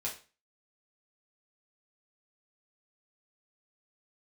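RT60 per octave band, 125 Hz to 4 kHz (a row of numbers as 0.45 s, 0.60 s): 0.40 s, 0.35 s, 0.35 s, 0.35 s, 0.35 s, 0.35 s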